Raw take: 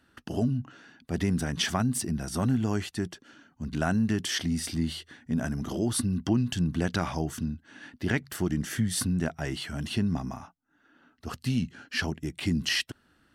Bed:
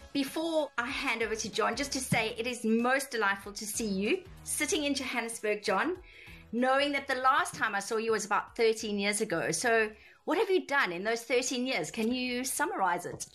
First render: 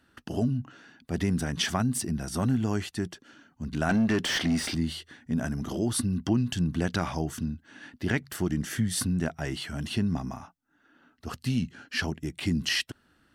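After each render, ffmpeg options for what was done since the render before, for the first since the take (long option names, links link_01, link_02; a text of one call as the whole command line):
ffmpeg -i in.wav -filter_complex "[0:a]asettb=1/sr,asplit=3[link_01][link_02][link_03];[link_01]atrim=end=3.894[link_04];[link_02]atrim=start=3.89:end=4.75,asetpts=PTS-STARTPTS,afade=type=in:duration=0.004:curve=qsin,afade=type=out:start_time=0.856:duration=0.004:curve=qsin,asplit=2[link_05][link_06];[link_06]highpass=frequency=720:poles=1,volume=21dB,asoftclip=type=tanh:threshold=-15dB[link_07];[link_05][link_07]amix=inputs=2:normalize=0,lowpass=frequency=1900:poles=1,volume=-6dB[link_08];[link_03]atrim=start=4.746[link_09];[link_04][link_08]acrossfade=duration=0.004:curve1=hsin:curve2=qsin[link_10];[link_10][link_09]acrossfade=duration=0.004:curve1=qsin:curve2=hsin" out.wav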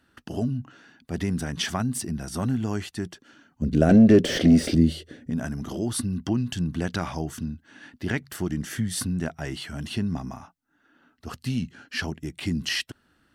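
ffmpeg -i in.wav -filter_complex "[0:a]asettb=1/sr,asplit=3[link_01][link_02][link_03];[link_01]atrim=end=3.624[link_04];[link_02]atrim=start=3.62:end=5.3,asetpts=PTS-STARTPTS,afade=type=in:duration=0.004:curve=qsin,afade=type=out:start_time=1.676:duration=0.004:curve=qsin,lowshelf=frequency=700:width_type=q:width=3:gain=9[link_05];[link_03]atrim=start=5.296[link_06];[link_04][link_05]acrossfade=duration=0.004:curve1=hsin:curve2=qsin[link_07];[link_07][link_06]acrossfade=duration=0.004:curve1=qsin:curve2=hsin" out.wav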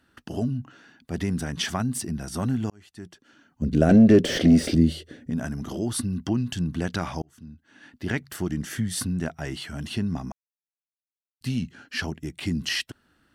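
ffmpeg -i in.wav -filter_complex "[0:a]asplit=5[link_01][link_02][link_03][link_04][link_05];[link_01]atrim=end=2.7,asetpts=PTS-STARTPTS,afade=type=out:start_time=2.696:duration=0.004:curve=hsin[link_06];[link_02]atrim=start=2.7:end=7.22,asetpts=PTS-STARTPTS,afade=type=in:duration=0.94,afade=type=out:start_time=4.516:duration=0.004:curve=hsin[link_07];[link_03]atrim=start=7.22:end=10.32,asetpts=PTS-STARTPTS,afade=type=in:duration=0.93,afade=type=out:start_time=3.096:duration=0.004:curve=hsin[link_08];[link_04]atrim=start=10.32:end=11.41,asetpts=PTS-STARTPTS,volume=0[link_09];[link_05]atrim=start=11.41,asetpts=PTS-STARTPTS,afade=type=in:duration=0.004:curve=hsin[link_10];[link_06][link_07][link_08][link_09][link_10]concat=n=5:v=0:a=1" out.wav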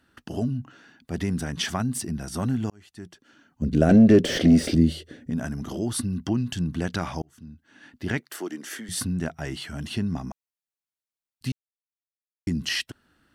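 ffmpeg -i in.wav -filter_complex "[0:a]asettb=1/sr,asplit=3[link_01][link_02][link_03];[link_01]atrim=end=8.204[link_04];[link_02]atrim=start=8.2:end=8.89,asetpts=PTS-STARTPTS,afade=type=in:duration=0.004:curve=qsin,afade=type=out:start_time=0.686:duration=0.004:curve=qsin,highpass=frequency=300:width=0.5412,highpass=frequency=300:width=1.3066[link_05];[link_03]atrim=start=8.886[link_06];[link_04][link_05]acrossfade=duration=0.004:curve1=hsin:curve2=qsin[link_07];[link_07][link_06]acrossfade=duration=0.004:curve1=qsin:curve2=hsin,asplit=3[link_08][link_09][link_10];[link_08]atrim=end=11.52,asetpts=PTS-STARTPTS,afade=type=out:start_time=11.516:duration=0.004:curve=hsin[link_11];[link_09]atrim=start=11.52:end=12.47,asetpts=PTS-STARTPTS,volume=0[link_12];[link_10]atrim=start=12.47,asetpts=PTS-STARTPTS,afade=type=in:duration=0.004:curve=hsin[link_13];[link_11][link_12][link_13]concat=n=3:v=0:a=1" out.wav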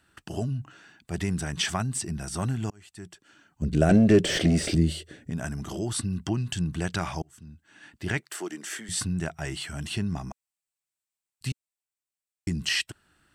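ffmpeg -i in.wav -filter_complex "[0:a]equalizer=frequency=250:width_type=o:width=0.33:gain=-11,equalizer=frequency=500:width_type=o:width=0.33:gain=-5,equalizer=frequency=2500:width_type=o:width=0.33:gain=3,equalizer=frequency=8000:width_type=o:width=0.33:gain=10,acrossover=split=7700[link_01][link_02];[link_02]acompressor=threshold=-41dB:ratio=4:attack=1:release=60[link_03];[link_01][link_03]amix=inputs=2:normalize=0" out.wav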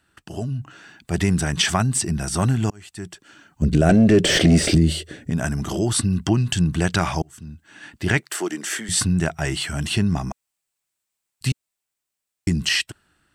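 ffmpeg -i in.wav -af "alimiter=limit=-14.5dB:level=0:latency=1:release=82,dynaudnorm=framelen=150:gausssize=9:maxgain=9dB" out.wav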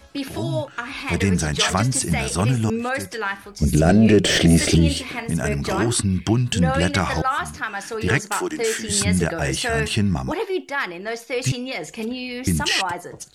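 ffmpeg -i in.wav -i bed.wav -filter_complex "[1:a]volume=3dB[link_01];[0:a][link_01]amix=inputs=2:normalize=0" out.wav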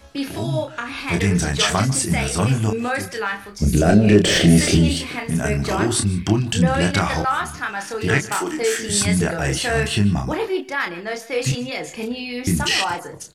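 ffmpeg -i in.wav -filter_complex "[0:a]asplit=2[link_01][link_02];[link_02]adelay=29,volume=-5dB[link_03];[link_01][link_03]amix=inputs=2:normalize=0,aecho=1:1:149:0.112" out.wav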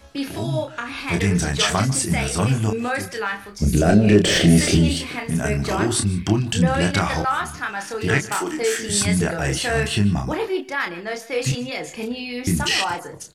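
ffmpeg -i in.wav -af "volume=-1dB" out.wav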